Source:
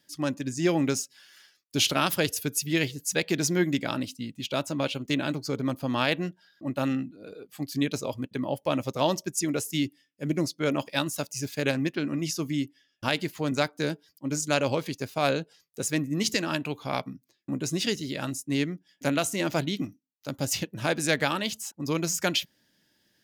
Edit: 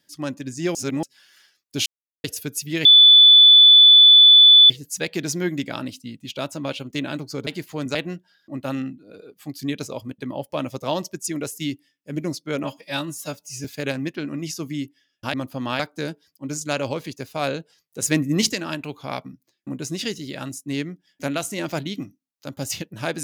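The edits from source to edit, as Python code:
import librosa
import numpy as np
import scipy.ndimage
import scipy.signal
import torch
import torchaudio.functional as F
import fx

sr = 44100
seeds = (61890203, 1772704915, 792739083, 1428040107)

y = fx.edit(x, sr, fx.reverse_span(start_s=0.75, length_s=0.28),
    fx.silence(start_s=1.86, length_s=0.38),
    fx.insert_tone(at_s=2.85, length_s=1.85, hz=3480.0, db=-6.5),
    fx.swap(start_s=5.62, length_s=0.46, other_s=13.13, other_length_s=0.48),
    fx.stretch_span(start_s=10.77, length_s=0.67, factor=1.5),
    fx.clip_gain(start_s=15.84, length_s=0.47, db=7.0), tone=tone)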